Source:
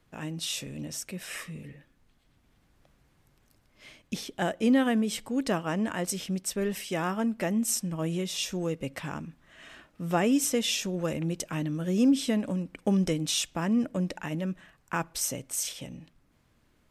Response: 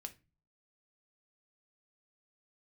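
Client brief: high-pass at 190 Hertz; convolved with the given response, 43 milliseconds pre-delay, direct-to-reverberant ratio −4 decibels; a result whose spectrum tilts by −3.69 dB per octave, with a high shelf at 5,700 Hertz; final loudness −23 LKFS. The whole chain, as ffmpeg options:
-filter_complex "[0:a]highpass=190,highshelf=frequency=5700:gain=7.5,asplit=2[link_01][link_02];[1:a]atrim=start_sample=2205,adelay=43[link_03];[link_02][link_03]afir=irnorm=-1:irlink=0,volume=8.5dB[link_04];[link_01][link_04]amix=inputs=2:normalize=0"

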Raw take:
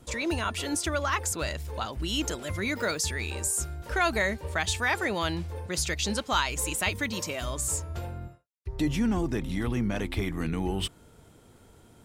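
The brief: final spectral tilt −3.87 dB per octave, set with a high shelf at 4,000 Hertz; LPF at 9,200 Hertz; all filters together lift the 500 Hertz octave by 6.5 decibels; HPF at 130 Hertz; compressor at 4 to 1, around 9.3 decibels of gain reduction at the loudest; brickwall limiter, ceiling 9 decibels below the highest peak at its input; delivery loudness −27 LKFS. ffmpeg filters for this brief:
ffmpeg -i in.wav -af "highpass=130,lowpass=9200,equalizer=frequency=500:width_type=o:gain=8.5,highshelf=frequency=4000:gain=-3.5,acompressor=threshold=-31dB:ratio=4,volume=9.5dB,alimiter=limit=-17.5dB:level=0:latency=1" out.wav

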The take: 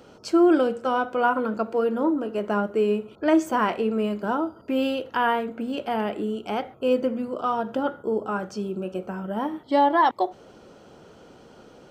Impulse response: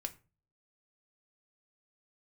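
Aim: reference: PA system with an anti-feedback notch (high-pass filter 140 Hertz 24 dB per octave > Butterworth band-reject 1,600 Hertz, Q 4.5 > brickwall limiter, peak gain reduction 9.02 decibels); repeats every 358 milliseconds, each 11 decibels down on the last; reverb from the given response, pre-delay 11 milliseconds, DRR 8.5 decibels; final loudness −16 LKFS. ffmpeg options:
-filter_complex "[0:a]aecho=1:1:358|716|1074:0.282|0.0789|0.0221,asplit=2[link_01][link_02];[1:a]atrim=start_sample=2205,adelay=11[link_03];[link_02][link_03]afir=irnorm=-1:irlink=0,volume=-7dB[link_04];[link_01][link_04]amix=inputs=2:normalize=0,highpass=frequency=140:width=0.5412,highpass=frequency=140:width=1.3066,asuperstop=centerf=1600:order=8:qfactor=4.5,volume=11.5dB,alimiter=limit=-6dB:level=0:latency=1"

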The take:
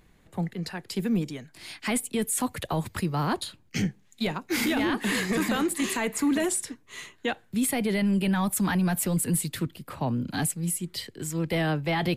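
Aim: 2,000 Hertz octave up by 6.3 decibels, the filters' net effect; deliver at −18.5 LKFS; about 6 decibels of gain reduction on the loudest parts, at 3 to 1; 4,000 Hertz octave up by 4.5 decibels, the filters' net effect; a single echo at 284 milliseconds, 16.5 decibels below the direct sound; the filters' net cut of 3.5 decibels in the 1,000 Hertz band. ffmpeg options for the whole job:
ffmpeg -i in.wav -af "equalizer=frequency=1000:width_type=o:gain=-7,equalizer=frequency=2000:width_type=o:gain=8.5,equalizer=frequency=4000:width_type=o:gain=3,acompressor=threshold=-29dB:ratio=3,aecho=1:1:284:0.15,volume=13dB" out.wav

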